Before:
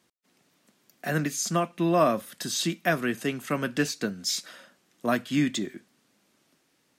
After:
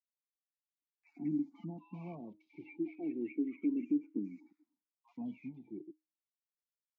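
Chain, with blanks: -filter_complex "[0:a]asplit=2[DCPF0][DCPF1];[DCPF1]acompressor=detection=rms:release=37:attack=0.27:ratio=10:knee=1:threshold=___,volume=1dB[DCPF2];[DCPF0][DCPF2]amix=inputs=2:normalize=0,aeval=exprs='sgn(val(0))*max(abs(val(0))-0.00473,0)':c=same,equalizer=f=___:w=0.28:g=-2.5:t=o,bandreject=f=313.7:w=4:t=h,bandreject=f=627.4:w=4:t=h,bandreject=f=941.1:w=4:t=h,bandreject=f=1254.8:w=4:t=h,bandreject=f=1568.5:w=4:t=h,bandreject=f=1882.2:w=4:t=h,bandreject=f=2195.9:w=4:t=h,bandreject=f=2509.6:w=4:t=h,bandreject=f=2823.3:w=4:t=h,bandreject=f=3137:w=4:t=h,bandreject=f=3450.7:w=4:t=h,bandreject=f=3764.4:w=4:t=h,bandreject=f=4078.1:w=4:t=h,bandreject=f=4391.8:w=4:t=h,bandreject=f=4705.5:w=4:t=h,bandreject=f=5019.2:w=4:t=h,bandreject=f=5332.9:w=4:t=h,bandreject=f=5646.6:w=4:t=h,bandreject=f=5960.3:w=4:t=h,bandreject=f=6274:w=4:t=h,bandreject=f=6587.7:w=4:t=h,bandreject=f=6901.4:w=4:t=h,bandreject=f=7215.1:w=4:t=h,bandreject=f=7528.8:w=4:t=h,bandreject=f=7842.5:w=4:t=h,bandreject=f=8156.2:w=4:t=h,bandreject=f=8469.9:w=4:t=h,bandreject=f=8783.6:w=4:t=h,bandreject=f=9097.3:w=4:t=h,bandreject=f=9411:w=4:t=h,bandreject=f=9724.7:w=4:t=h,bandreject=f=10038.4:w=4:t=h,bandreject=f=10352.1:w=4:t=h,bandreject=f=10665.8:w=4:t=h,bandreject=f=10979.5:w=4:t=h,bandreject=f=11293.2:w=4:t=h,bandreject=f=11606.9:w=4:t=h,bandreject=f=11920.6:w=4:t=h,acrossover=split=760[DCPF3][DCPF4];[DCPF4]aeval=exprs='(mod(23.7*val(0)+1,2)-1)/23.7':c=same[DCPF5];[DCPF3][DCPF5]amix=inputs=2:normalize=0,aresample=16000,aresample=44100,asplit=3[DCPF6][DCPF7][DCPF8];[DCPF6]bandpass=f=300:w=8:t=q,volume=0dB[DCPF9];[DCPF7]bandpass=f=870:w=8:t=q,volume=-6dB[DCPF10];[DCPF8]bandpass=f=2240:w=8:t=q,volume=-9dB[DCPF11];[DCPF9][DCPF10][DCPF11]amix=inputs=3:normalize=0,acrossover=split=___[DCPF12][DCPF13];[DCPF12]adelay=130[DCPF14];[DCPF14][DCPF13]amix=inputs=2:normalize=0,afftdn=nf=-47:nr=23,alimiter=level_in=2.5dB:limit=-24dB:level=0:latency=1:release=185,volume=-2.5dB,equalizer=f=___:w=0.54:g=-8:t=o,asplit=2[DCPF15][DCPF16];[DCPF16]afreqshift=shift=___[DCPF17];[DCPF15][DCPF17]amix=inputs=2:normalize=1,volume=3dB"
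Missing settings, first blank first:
-34dB, 5100, 1000, 890, -0.3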